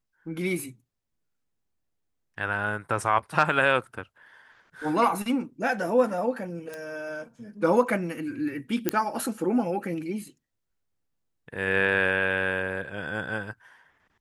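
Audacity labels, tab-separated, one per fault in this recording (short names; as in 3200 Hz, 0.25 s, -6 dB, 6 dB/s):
6.740000	6.740000	pop -23 dBFS
8.890000	8.890000	pop -7 dBFS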